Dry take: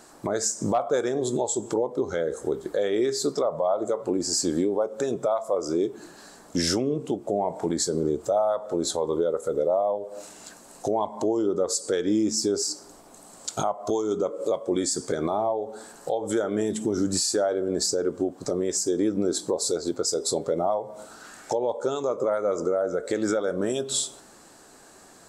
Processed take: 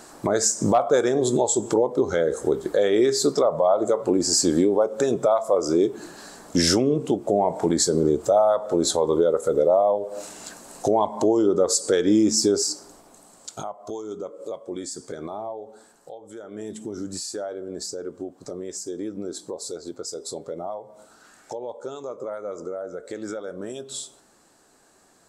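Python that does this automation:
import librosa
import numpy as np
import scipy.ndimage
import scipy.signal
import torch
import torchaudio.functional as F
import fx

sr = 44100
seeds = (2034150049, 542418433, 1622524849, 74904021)

y = fx.gain(x, sr, db=fx.line((12.47, 5.0), (13.69, -7.5), (15.7, -7.5), (16.32, -16.0), (16.68, -7.5)))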